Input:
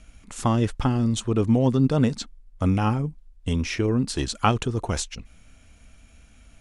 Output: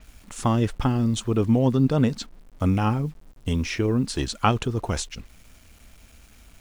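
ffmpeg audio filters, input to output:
ffmpeg -i in.wav -af "acrusher=bits=8:mix=0:aa=0.000001,adynamicequalizer=threshold=0.00501:dfrequency=6100:dqfactor=0.7:tfrequency=6100:tqfactor=0.7:attack=5:release=100:ratio=0.375:range=2.5:mode=cutabove:tftype=highshelf" out.wav

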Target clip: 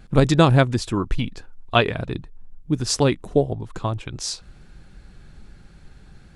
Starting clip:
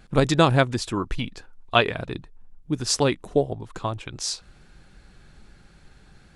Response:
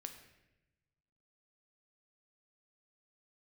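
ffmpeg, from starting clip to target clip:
-af "lowshelf=frequency=310:gain=6.5"

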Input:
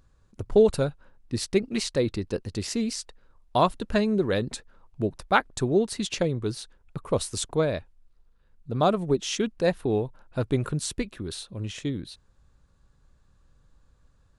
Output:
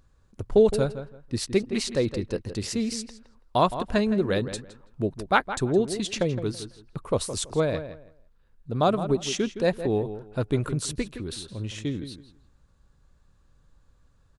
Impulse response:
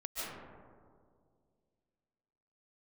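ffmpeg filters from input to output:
-filter_complex "[0:a]asplit=2[link_01][link_02];[link_02]adelay=165,lowpass=frequency=2700:poles=1,volume=-11dB,asplit=2[link_03][link_04];[link_04]adelay=165,lowpass=frequency=2700:poles=1,volume=0.22,asplit=2[link_05][link_06];[link_06]adelay=165,lowpass=frequency=2700:poles=1,volume=0.22[link_07];[link_01][link_03][link_05][link_07]amix=inputs=4:normalize=0"

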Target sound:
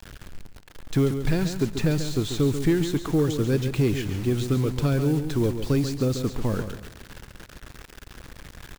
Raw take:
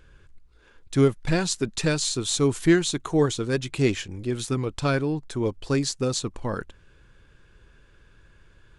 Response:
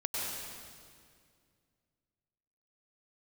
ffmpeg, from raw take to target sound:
-filter_complex "[0:a]lowpass=7500,lowshelf=frequency=180:gain=4.5,acrossover=split=490|2500[link_01][link_02][link_03];[link_01]acompressor=threshold=-22dB:ratio=4[link_04];[link_02]acompressor=threshold=-40dB:ratio=4[link_05];[link_03]acompressor=threshold=-45dB:ratio=4[link_06];[link_04][link_05][link_06]amix=inputs=3:normalize=0,asplit=2[link_07][link_08];[link_08]asoftclip=type=tanh:threshold=-24dB,volume=-4dB[link_09];[link_07][link_09]amix=inputs=2:normalize=0,acrusher=bits=6:mix=0:aa=0.000001,aecho=1:1:139|278|417|556:0.355|0.11|0.0341|0.0106,asplit=2[link_10][link_11];[1:a]atrim=start_sample=2205[link_12];[link_11][link_12]afir=irnorm=-1:irlink=0,volume=-27.5dB[link_13];[link_10][link_13]amix=inputs=2:normalize=0"

